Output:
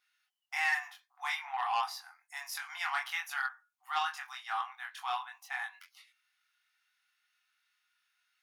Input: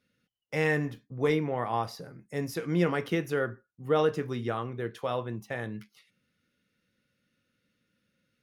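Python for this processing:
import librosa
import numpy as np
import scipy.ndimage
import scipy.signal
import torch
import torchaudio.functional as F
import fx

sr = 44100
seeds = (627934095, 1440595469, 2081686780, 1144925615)

y = fx.brickwall_highpass(x, sr, low_hz=710.0)
y = fx.doubler(y, sr, ms=23.0, db=-2)
y = fx.transformer_sat(y, sr, knee_hz=1800.0)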